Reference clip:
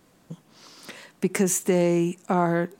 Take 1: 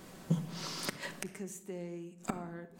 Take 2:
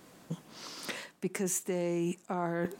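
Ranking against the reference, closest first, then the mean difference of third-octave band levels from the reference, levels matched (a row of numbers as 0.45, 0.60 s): 2, 1; 6.0, 12.0 dB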